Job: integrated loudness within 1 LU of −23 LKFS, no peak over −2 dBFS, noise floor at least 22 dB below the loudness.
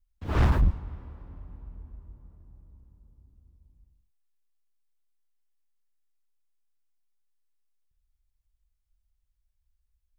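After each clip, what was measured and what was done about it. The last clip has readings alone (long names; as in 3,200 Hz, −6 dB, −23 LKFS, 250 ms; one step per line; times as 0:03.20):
share of clipped samples 0.6%; peaks flattened at −16.5 dBFS; integrated loudness −27.0 LKFS; sample peak −16.5 dBFS; target loudness −23.0 LKFS
→ clipped peaks rebuilt −16.5 dBFS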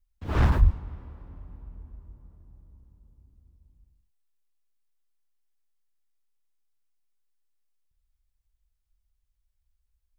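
share of clipped samples 0.0%; integrated loudness −25.0 LKFS; sample peak −7.5 dBFS; target loudness −23.0 LKFS
→ level +2 dB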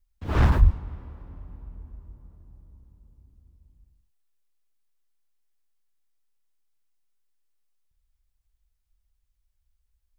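integrated loudness −23.0 LKFS; sample peak −5.5 dBFS; background noise floor −74 dBFS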